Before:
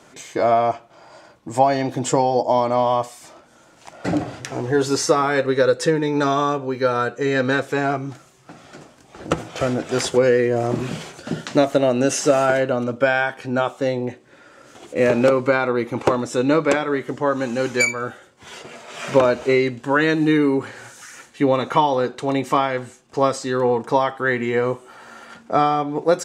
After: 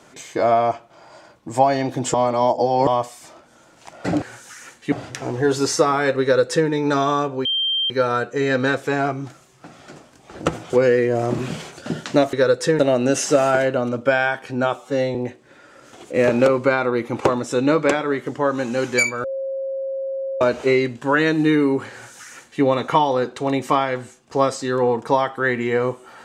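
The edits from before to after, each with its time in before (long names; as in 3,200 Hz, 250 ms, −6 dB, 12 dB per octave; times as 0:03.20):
0:02.14–0:02.87: reverse
0:05.52–0:05.98: duplicate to 0:11.74
0:06.75: insert tone 3,160 Hz −18 dBFS 0.45 s
0:09.55–0:10.11: remove
0:13.71–0:13.97: time-stretch 1.5×
0:18.06–0:19.23: beep over 538 Hz −23 dBFS
0:20.74–0:21.44: duplicate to 0:04.22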